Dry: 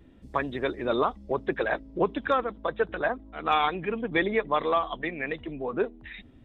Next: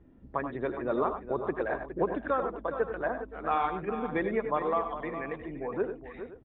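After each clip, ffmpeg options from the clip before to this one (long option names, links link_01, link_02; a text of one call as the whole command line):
ffmpeg -i in.wav -filter_complex "[0:a]lowpass=1500,asplit=2[link_01][link_02];[link_02]aecho=0:1:81|97|413|520:0.224|0.316|0.282|0.119[link_03];[link_01][link_03]amix=inputs=2:normalize=0,volume=-3.5dB" out.wav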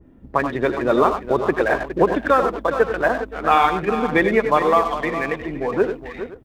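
ffmpeg -i in.wav -filter_complex "[0:a]asplit=2[link_01][link_02];[link_02]aeval=exprs='sgn(val(0))*max(abs(val(0))-0.00447,0)':channel_layout=same,volume=-4dB[link_03];[link_01][link_03]amix=inputs=2:normalize=0,adynamicequalizer=threshold=0.01:dfrequency=1900:dqfactor=0.7:tfrequency=1900:tqfactor=0.7:attack=5:release=100:ratio=0.375:range=4:mode=boostabove:tftype=highshelf,volume=8dB" out.wav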